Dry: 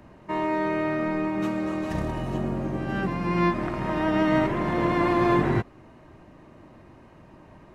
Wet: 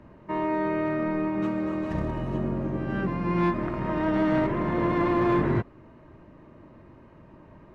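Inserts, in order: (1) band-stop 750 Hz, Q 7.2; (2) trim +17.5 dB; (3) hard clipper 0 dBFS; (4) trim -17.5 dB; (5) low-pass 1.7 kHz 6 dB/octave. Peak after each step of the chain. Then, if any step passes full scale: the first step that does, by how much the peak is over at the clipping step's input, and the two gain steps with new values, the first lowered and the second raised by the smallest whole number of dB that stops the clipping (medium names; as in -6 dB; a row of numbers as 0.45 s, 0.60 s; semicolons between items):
-10.5 dBFS, +7.0 dBFS, 0.0 dBFS, -17.5 dBFS, -17.5 dBFS; step 2, 7.0 dB; step 2 +10.5 dB, step 4 -10.5 dB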